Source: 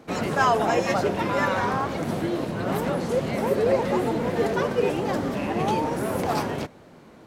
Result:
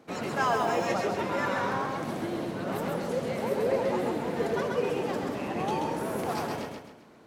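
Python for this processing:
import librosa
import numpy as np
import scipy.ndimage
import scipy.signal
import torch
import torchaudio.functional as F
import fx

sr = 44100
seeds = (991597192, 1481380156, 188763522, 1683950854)

p1 = x + fx.echo_feedback(x, sr, ms=132, feedback_pct=39, wet_db=-4, dry=0)
p2 = fx.quant_dither(p1, sr, seeds[0], bits=8, dither='none', at=(0.44, 0.87))
p3 = fx.highpass(p2, sr, hz=130.0, slope=6)
y = F.gain(torch.from_numpy(p3), -6.5).numpy()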